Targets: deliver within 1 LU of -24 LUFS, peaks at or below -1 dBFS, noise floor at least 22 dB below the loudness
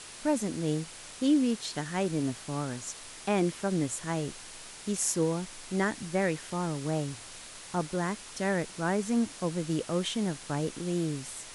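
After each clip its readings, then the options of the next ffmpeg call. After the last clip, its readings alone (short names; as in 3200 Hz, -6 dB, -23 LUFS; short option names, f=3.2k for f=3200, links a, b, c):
noise floor -46 dBFS; noise floor target -54 dBFS; loudness -31.5 LUFS; peak -14.0 dBFS; loudness target -24.0 LUFS
-> -af "afftdn=nr=8:nf=-46"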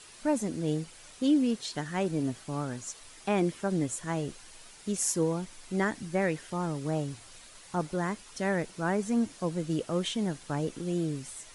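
noise floor -52 dBFS; noise floor target -54 dBFS
-> -af "afftdn=nr=6:nf=-52"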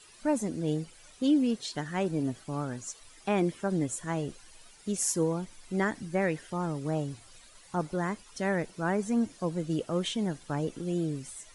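noise floor -55 dBFS; loudness -31.5 LUFS; peak -14.0 dBFS; loudness target -24.0 LUFS
-> -af "volume=7.5dB"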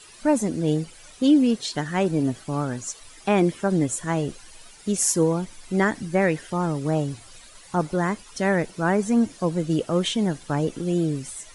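loudness -24.0 LUFS; peak -6.5 dBFS; noise floor -48 dBFS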